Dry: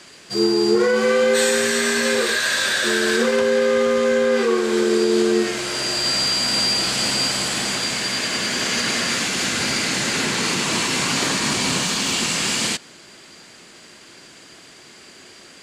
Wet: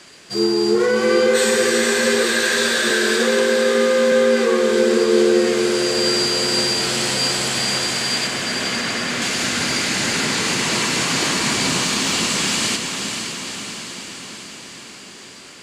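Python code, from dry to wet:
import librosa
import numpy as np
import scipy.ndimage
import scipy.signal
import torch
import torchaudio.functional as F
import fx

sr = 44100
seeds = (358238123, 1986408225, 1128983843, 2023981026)

y = fx.highpass(x, sr, hz=170.0, slope=24, at=(2.9, 4.12))
y = fx.high_shelf(y, sr, hz=4100.0, db=-9.5, at=(8.27, 9.22))
y = fx.echo_diffused(y, sr, ms=491, feedback_pct=64, wet_db=-6.0)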